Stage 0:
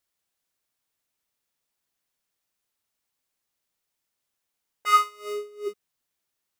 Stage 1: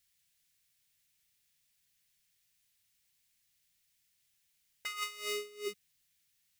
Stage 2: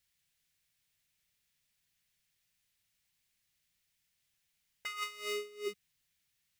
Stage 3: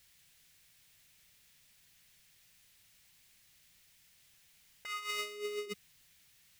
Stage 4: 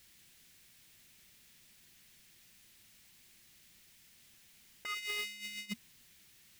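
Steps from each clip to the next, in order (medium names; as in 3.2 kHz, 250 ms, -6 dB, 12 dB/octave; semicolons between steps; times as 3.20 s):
high-order bell 580 Hz -14.5 dB 2.8 oct; compressor with a negative ratio -38 dBFS, ratio -1; trim +1 dB
treble shelf 3.8 kHz -6.5 dB; trim +1 dB
compressor with a negative ratio -48 dBFS, ratio -1; trim +7 dB
spectral replace 4.96–5.83 s, 240–1300 Hz after; overload inside the chain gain 35.5 dB; small resonant body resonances 230/340 Hz, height 10 dB, ringing for 65 ms; trim +3 dB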